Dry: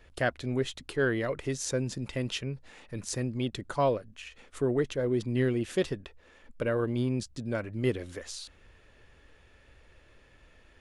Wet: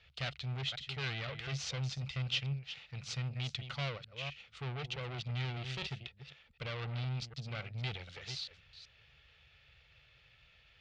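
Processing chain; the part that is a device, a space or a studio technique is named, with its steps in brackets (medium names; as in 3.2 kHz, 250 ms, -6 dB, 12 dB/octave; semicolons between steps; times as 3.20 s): chunks repeated in reverse 253 ms, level -12 dB; scooped metal amplifier (valve stage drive 33 dB, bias 0.8; cabinet simulation 81–4300 Hz, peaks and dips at 140 Hz +10 dB, 580 Hz -3 dB, 1 kHz -10 dB, 1.7 kHz -9 dB; amplifier tone stack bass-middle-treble 10-0-10); trim +11 dB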